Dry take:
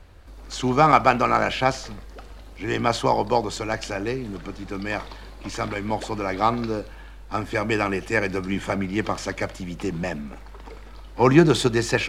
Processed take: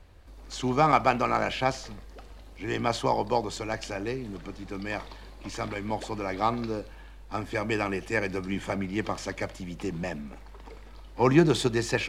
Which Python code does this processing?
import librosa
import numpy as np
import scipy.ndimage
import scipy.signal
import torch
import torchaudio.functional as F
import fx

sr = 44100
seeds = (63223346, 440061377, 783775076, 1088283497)

y = fx.peak_eq(x, sr, hz=1400.0, db=-4.0, octaves=0.27)
y = y * 10.0 ** (-5.0 / 20.0)